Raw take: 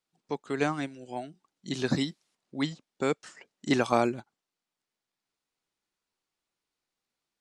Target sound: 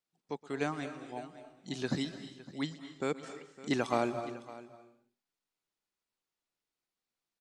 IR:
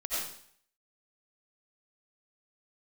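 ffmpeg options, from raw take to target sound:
-filter_complex "[0:a]aecho=1:1:558:0.133,asplit=2[s0][s1];[1:a]atrim=start_sample=2205,afade=t=out:st=0.42:d=0.01,atrim=end_sample=18963,adelay=120[s2];[s1][s2]afir=irnorm=-1:irlink=0,volume=0.168[s3];[s0][s3]amix=inputs=2:normalize=0,volume=0.501"

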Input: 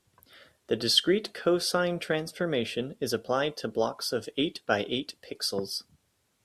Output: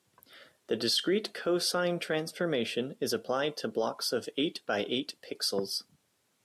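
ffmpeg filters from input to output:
-af "highpass=150,alimiter=limit=0.106:level=0:latency=1:release=12"

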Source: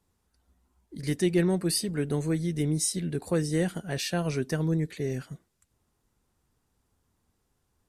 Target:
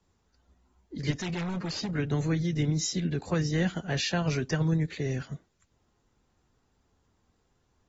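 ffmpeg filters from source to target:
-filter_complex "[0:a]acrossover=split=220|690|1900[s0][s1][s2][s3];[s1]acompressor=threshold=0.0126:ratio=6[s4];[s0][s4][s2][s3]amix=inputs=4:normalize=0,asplit=3[s5][s6][s7];[s5]afade=t=out:st=1.1:d=0.02[s8];[s6]volume=44.7,asoftclip=hard,volume=0.0224,afade=t=in:st=1.1:d=0.02,afade=t=out:st=1.9:d=0.02[s9];[s7]afade=t=in:st=1.9:d=0.02[s10];[s8][s9][s10]amix=inputs=3:normalize=0,volume=1.33" -ar 44100 -c:a aac -b:a 24k

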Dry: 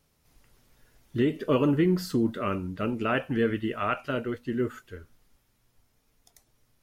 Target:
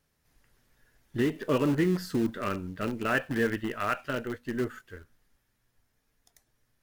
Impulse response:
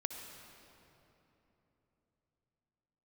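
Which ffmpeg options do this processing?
-filter_complex "[0:a]equalizer=f=1700:t=o:w=0.34:g=8,asplit=2[s0][s1];[s1]acrusher=bits=5:dc=4:mix=0:aa=0.000001,volume=0.398[s2];[s0][s2]amix=inputs=2:normalize=0,volume=0.531"

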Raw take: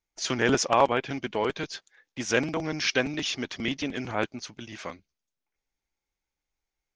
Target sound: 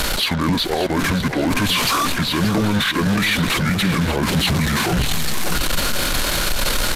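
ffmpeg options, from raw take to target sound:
-filter_complex "[0:a]aeval=exprs='val(0)+0.5*0.0251*sgn(val(0))':c=same,areverse,acompressor=threshold=0.0158:ratio=16,areverse,acrusher=bits=7:mix=0:aa=0.5,acrossover=split=480|3900[s0][s1][s2];[s1]asoftclip=type=tanh:threshold=0.0112[s3];[s0][s3][s2]amix=inputs=3:normalize=0,asetrate=29433,aresample=44100,atempo=1.49831,aecho=1:1:578|1156|1734|2312:0.282|0.11|0.0429|0.0167,alimiter=level_in=47.3:limit=0.891:release=50:level=0:latency=1,volume=0.355"

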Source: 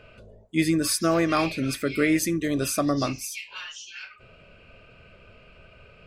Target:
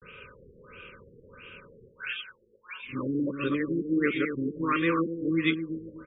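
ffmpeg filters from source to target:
-filter_complex "[0:a]areverse,adynamicequalizer=threshold=0.0126:dfrequency=800:dqfactor=0.72:tfrequency=800:tqfactor=0.72:attack=5:release=100:ratio=0.375:range=3:mode=cutabove:tftype=bell,asplit=2[s0][s1];[s1]acompressor=threshold=0.01:ratio=6,volume=1.12[s2];[s0][s2]amix=inputs=2:normalize=0,asuperstop=centerf=720:order=8:qfactor=1.8,aemphasis=mode=production:type=bsi,asplit=2[s3][s4];[s4]adelay=245,lowpass=f=2300:p=1,volume=0.422,asplit=2[s5][s6];[s6]adelay=245,lowpass=f=2300:p=1,volume=0.3,asplit=2[s7][s8];[s8]adelay=245,lowpass=f=2300:p=1,volume=0.3,asplit=2[s9][s10];[s10]adelay=245,lowpass=f=2300:p=1,volume=0.3[s11];[s5][s7][s9][s11]amix=inputs=4:normalize=0[s12];[s3][s12]amix=inputs=2:normalize=0,afftfilt=real='re*lt(b*sr/1024,490*pow(3800/490,0.5+0.5*sin(2*PI*1.5*pts/sr)))':imag='im*lt(b*sr/1024,490*pow(3800/490,0.5+0.5*sin(2*PI*1.5*pts/sr)))':win_size=1024:overlap=0.75"

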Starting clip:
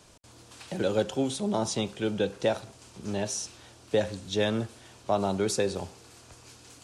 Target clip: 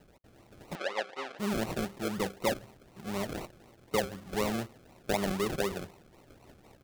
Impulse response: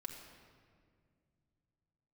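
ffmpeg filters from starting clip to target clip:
-filter_complex "[0:a]aecho=1:1:5.2:0.36,acrusher=samples=37:mix=1:aa=0.000001:lfo=1:lforange=22.2:lforate=4,asettb=1/sr,asplit=3[s0][s1][s2];[s0]atrim=end=0.754[s3];[s1]atrim=start=0.75:end=1.39,asetpts=PTS-STARTPTS,afade=t=in:d=0.004:c=qsin,afade=t=out:st=0.636:d=0.004:c=qsin,highpass=660,lowpass=3700[s4];[s2]atrim=start=1.386[s5];[s3][s4]acrossfade=d=0.004:c1=hsin:c2=qsin[s6];[s6][s5]acrossfade=d=0.004:c1=qsin:c2=hsin,volume=0.562"

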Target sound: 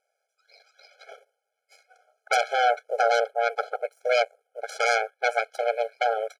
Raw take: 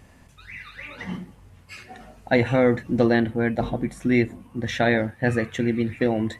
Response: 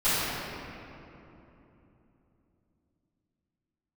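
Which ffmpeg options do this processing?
-af "highpass=130,aeval=exprs='0.562*(cos(1*acos(clip(val(0)/0.562,-1,1)))-cos(1*PI/2))+0.2*(cos(3*acos(clip(val(0)/0.562,-1,1)))-cos(3*PI/2))+0.1*(cos(4*acos(clip(val(0)/0.562,-1,1)))-cos(4*PI/2))+0.251*(cos(6*acos(clip(val(0)/0.562,-1,1)))-cos(6*PI/2))+0.00316*(cos(7*acos(clip(val(0)/0.562,-1,1)))-cos(7*PI/2))':c=same,aecho=1:1:1.4:0.48,afftfilt=real='re*eq(mod(floor(b*sr/1024/430),2),1)':imag='im*eq(mod(floor(b*sr/1024/430),2),1)':win_size=1024:overlap=0.75"

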